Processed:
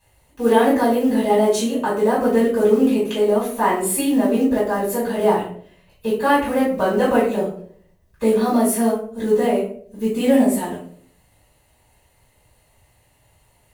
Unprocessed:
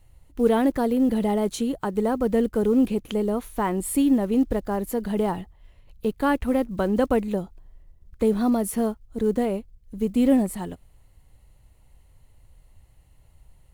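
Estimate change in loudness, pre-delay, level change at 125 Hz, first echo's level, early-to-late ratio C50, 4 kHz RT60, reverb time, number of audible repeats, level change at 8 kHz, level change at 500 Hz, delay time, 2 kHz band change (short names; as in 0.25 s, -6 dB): +5.0 dB, 4 ms, +1.0 dB, none, 4.0 dB, 0.35 s, 0.55 s, none, +8.5 dB, +7.0 dB, none, +9.0 dB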